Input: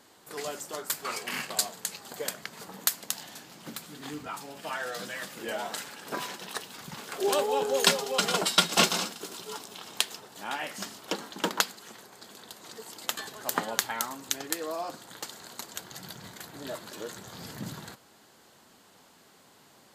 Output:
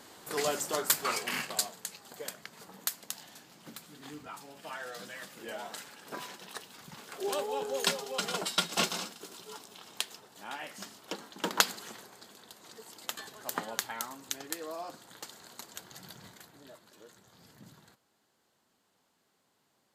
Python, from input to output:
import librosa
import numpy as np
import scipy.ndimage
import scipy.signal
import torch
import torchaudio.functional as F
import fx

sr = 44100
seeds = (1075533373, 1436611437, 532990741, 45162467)

y = fx.gain(x, sr, db=fx.line((0.89, 5.0), (1.92, -7.0), (11.38, -7.0), (11.7, 4.5), (12.37, -6.0), (16.25, -6.0), (16.75, -16.0)))